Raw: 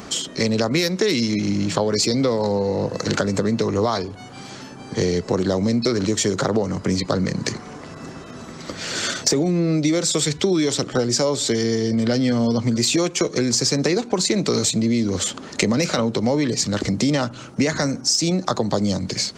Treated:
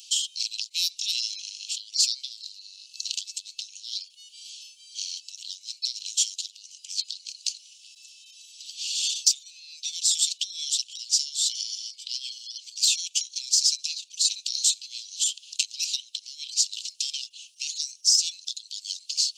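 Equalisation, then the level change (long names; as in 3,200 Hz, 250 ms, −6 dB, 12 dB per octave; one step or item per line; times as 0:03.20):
Butterworth high-pass 2,700 Hz 96 dB per octave
0.0 dB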